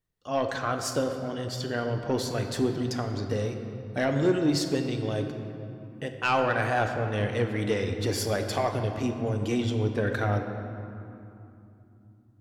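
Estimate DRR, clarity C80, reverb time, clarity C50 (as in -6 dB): 4.5 dB, 7.0 dB, 2.9 s, 6.0 dB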